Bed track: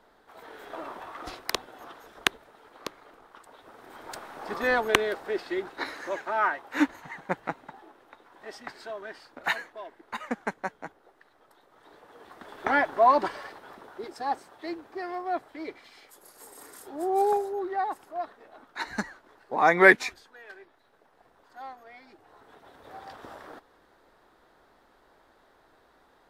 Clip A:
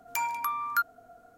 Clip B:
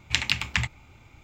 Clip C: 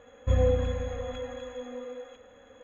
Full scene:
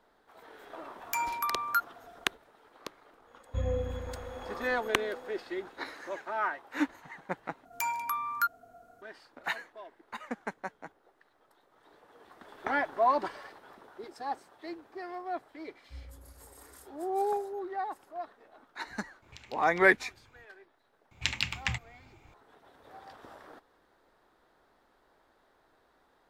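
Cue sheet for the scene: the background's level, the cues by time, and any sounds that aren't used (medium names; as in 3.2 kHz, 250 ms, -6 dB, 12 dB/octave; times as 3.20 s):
bed track -6 dB
0.98 s: add A -1.5 dB
3.27 s: add C -8 dB
7.65 s: replace with A -2 dB
15.63 s: add C -12.5 dB + pitch-class resonator C#, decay 0.37 s
19.22 s: add B -10.5 dB + compression 5:1, threshold -38 dBFS
21.11 s: add B -6.5 dB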